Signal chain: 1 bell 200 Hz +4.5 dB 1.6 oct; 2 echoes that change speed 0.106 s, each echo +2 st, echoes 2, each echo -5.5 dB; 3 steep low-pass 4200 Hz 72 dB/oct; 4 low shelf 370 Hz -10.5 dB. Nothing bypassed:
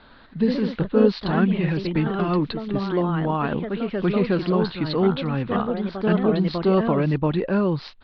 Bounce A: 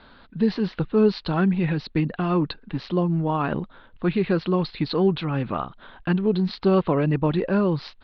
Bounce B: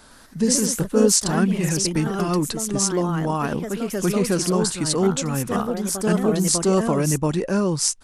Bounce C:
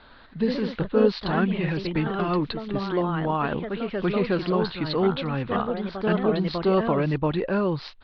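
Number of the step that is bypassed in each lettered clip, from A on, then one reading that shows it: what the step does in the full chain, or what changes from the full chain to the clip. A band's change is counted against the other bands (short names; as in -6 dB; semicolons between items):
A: 2, crest factor change -3.5 dB; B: 3, 4 kHz band +7.5 dB; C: 1, 125 Hz band -3.5 dB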